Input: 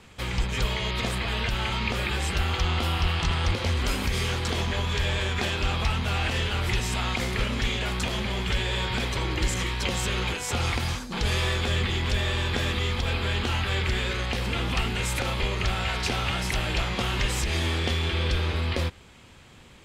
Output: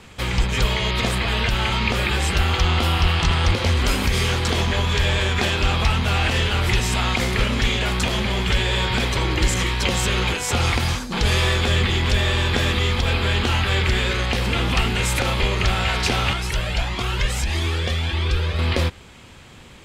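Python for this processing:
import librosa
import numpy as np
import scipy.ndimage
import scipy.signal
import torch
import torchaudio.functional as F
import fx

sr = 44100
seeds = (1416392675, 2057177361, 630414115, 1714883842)

y = fx.comb_cascade(x, sr, direction='rising', hz=1.6, at=(16.33, 18.59))
y = y * 10.0 ** (6.5 / 20.0)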